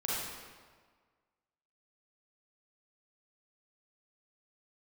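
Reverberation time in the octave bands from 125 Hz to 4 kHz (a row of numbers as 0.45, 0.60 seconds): 1.5, 1.6, 1.6, 1.6, 1.4, 1.2 seconds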